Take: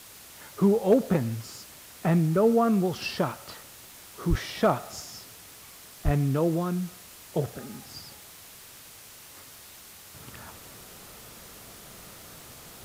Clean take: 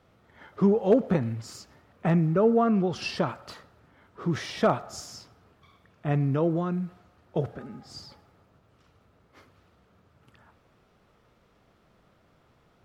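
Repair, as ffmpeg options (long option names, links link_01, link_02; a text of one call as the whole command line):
ffmpeg -i in.wav -filter_complex "[0:a]adeclick=threshold=4,asplit=3[link_01][link_02][link_03];[link_01]afade=type=out:start_time=4.29:duration=0.02[link_04];[link_02]highpass=frequency=140:width=0.5412,highpass=frequency=140:width=1.3066,afade=type=in:start_time=4.29:duration=0.02,afade=type=out:start_time=4.41:duration=0.02[link_05];[link_03]afade=type=in:start_time=4.41:duration=0.02[link_06];[link_04][link_05][link_06]amix=inputs=3:normalize=0,asplit=3[link_07][link_08][link_09];[link_07]afade=type=out:start_time=6.04:duration=0.02[link_10];[link_08]highpass=frequency=140:width=0.5412,highpass=frequency=140:width=1.3066,afade=type=in:start_time=6.04:duration=0.02,afade=type=out:start_time=6.16:duration=0.02[link_11];[link_09]afade=type=in:start_time=6.16:duration=0.02[link_12];[link_10][link_11][link_12]amix=inputs=3:normalize=0,afwtdn=0.0045,asetnsamples=nb_out_samples=441:pad=0,asendcmd='10.14 volume volume -12dB',volume=0dB" out.wav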